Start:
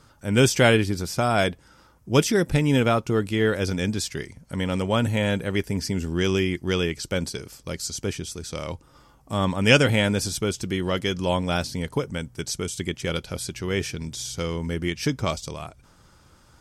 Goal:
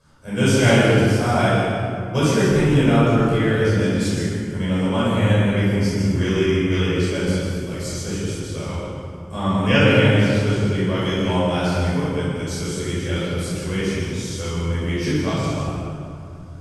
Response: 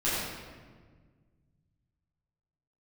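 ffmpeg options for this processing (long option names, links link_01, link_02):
-filter_complex "[0:a]asettb=1/sr,asplit=3[link_01][link_02][link_03];[link_01]atrim=end=8.484[link_04];[link_02]atrim=start=8.48:end=10.77,asetpts=PTS-STARTPTS,afade=type=in:duration=0.004:curve=qsin,afade=type=out:start_time=2.286:duration=0.004:curve=qsin,acrossover=split=4500[link_05][link_06];[link_06]acompressor=threshold=-42dB:ratio=4:attack=1:release=60[link_07];[link_05][link_07]amix=inputs=2:normalize=0[link_08];[link_03]atrim=start=10.766[link_09];[link_04][link_08]acrossfade=duration=0.004:curve1=hsin:curve2=qsin[link_10];[link_10][link_09]acrossfade=duration=0.004:curve1=qsin:curve2=hsin[link_11];[1:a]atrim=start_sample=2205,asetrate=24696,aresample=44100[link_12];[link_11][link_12]afir=irnorm=-1:irlink=0,volume=-12dB"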